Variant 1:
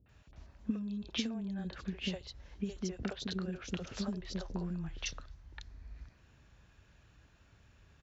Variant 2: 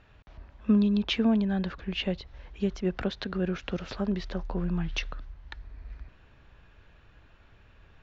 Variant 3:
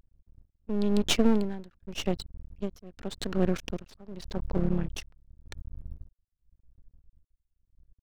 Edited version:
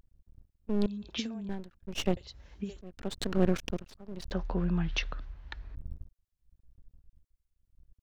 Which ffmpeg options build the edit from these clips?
-filter_complex "[0:a]asplit=2[s0][s1];[2:a]asplit=4[s2][s3][s4][s5];[s2]atrim=end=0.862[s6];[s0]atrim=start=0.858:end=1.492[s7];[s3]atrim=start=1.488:end=2.172[s8];[s1]atrim=start=2.168:end=2.812[s9];[s4]atrim=start=2.808:end=4.322[s10];[1:a]atrim=start=4.318:end=5.752[s11];[s5]atrim=start=5.748[s12];[s6][s7]acrossfade=d=0.004:c1=hsin:c2=hsin[s13];[s13][s8]acrossfade=d=0.004:c1=hsin:c2=hsin[s14];[s14][s9]acrossfade=d=0.004:c1=hsin:c2=hsin[s15];[s15][s10]acrossfade=d=0.004:c1=hsin:c2=hsin[s16];[s16][s11]acrossfade=d=0.004:c1=hsin:c2=hsin[s17];[s17][s12]acrossfade=d=0.004:c1=hsin:c2=hsin"

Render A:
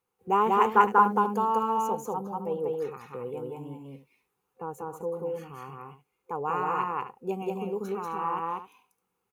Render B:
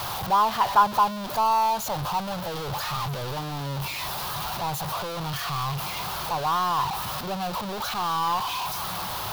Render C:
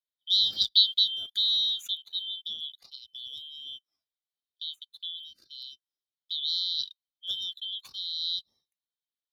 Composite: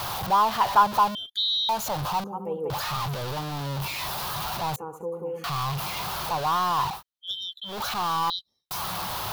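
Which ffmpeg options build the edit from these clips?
-filter_complex "[2:a]asplit=3[s0][s1][s2];[0:a]asplit=2[s3][s4];[1:a]asplit=6[s5][s6][s7][s8][s9][s10];[s5]atrim=end=1.152[s11];[s0]atrim=start=1.148:end=1.692[s12];[s6]atrim=start=1.688:end=2.242[s13];[s3]atrim=start=2.238:end=2.702[s14];[s7]atrim=start=2.698:end=4.762[s15];[s4]atrim=start=4.758:end=5.442[s16];[s8]atrim=start=5.438:end=7.03[s17];[s1]atrim=start=6.87:end=7.79[s18];[s9]atrim=start=7.63:end=8.302[s19];[s2]atrim=start=8.298:end=8.712[s20];[s10]atrim=start=8.708[s21];[s11][s12]acrossfade=d=0.004:c1=hsin:c2=hsin[s22];[s22][s13]acrossfade=d=0.004:c1=hsin:c2=hsin[s23];[s23][s14]acrossfade=d=0.004:c1=hsin:c2=hsin[s24];[s24][s15]acrossfade=d=0.004:c1=hsin:c2=hsin[s25];[s25][s16]acrossfade=d=0.004:c1=hsin:c2=hsin[s26];[s26][s17]acrossfade=d=0.004:c1=hsin:c2=hsin[s27];[s27][s18]acrossfade=d=0.16:c1=tri:c2=tri[s28];[s28][s19]acrossfade=d=0.16:c1=tri:c2=tri[s29];[s29][s20]acrossfade=d=0.004:c1=hsin:c2=hsin[s30];[s30][s21]acrossfade=d=0.004:c1=hsin:c2=hsin"

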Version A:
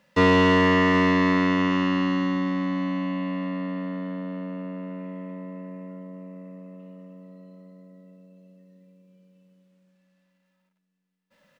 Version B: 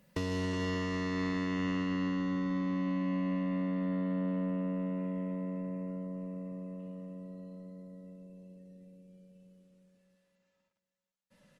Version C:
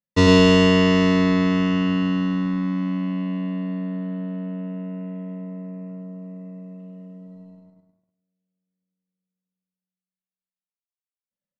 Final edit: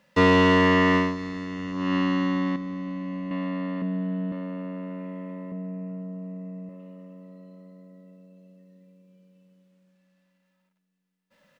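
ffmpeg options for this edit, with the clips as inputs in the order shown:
-filter_complex "[1:a]asplit=2[s0][s1];[2:a]asplit=2[s2][s3];[0:a]asplit=5[s4][s5][s6][s7][s8];[s4]atrim=end=1.18[s9];[s0]atrim=start=0.94:end=1.95[s10];[s5]atrim=start=1.71:end=2.562[s11];[s1]atrim=start=2.558:end=3.312[s12];[s6]atrim=start=3.308:end=3.822[s13];[s2]atrim=start=3.818:end=4.322[s14];[s7]atrim=start=4.318:end=5.522[s15];[s3]atrim=start=5.518:end=6.692[s16];[s8]atrim=start=6.688[s17];[s9][s10]acrossfade=d=0.24:c1=tri:c2=tri[s18];[s18][s11]acrossfade=d=0.24:c1=tri:c2=tri[s19];[s19][s12]acrossfade=d=0.004:c1=hsin:c2=hsin[s20];[s20][s13]acrossfade=d=0.004:c1=hsin:c2=hsin[s21];[s21][s14]acrossfade=d=0.004:c1=hsin:c2=hsin[s22];[s22][s15]acrossfade=d=0.004:c1=hsin:c2=hsin[s23];[s23][s16]acrossfade=d=0.004:c1=hsin:c2=hsin[s24];[s24][s17]acrossfade=d=0.004:c1=hsin:c2=hsin"

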